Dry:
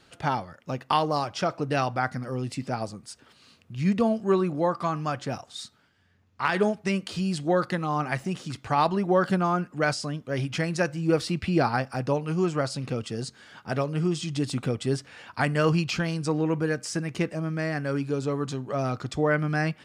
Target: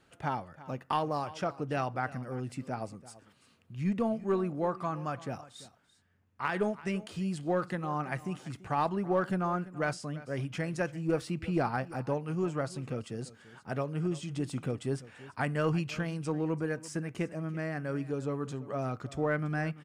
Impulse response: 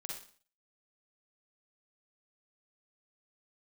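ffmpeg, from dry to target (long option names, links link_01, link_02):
-filter_complex "[0:a]equalizer=frequency=4500:width_type=o:width=1.1:gain=-8,asplit=2[link_01][link_02];[link_02]aeval=exprs='clip(val(0),-1,0.0668)':channel_layout=same,volume=-8.5dB[link_03];[link_01][link_03]amix=inputs=2:normalize=0,aecho=1:1:338:0.126,volume=-9dB"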